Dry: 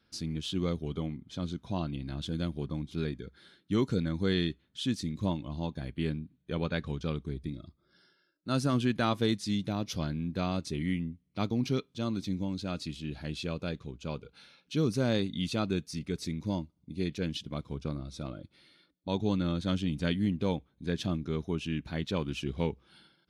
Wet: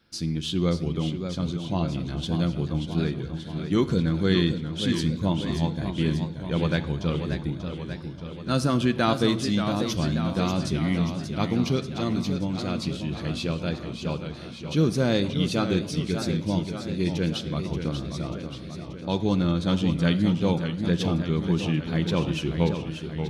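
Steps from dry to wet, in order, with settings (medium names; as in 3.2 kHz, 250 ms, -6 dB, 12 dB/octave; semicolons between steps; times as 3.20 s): on a send at -10 dB: reverberation RT60 1.0 s, pre-delay 6 ms; on the sum: modulated delay 584 ms, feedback 64%, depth 116 cents, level -8 dB; trim +5.5 dB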